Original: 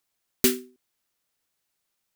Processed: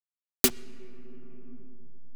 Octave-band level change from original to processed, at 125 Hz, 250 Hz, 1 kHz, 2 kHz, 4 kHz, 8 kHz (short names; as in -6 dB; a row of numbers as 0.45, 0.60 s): 0.0, -4.5, +5.0, -1.5, 0.0, +0.5 dB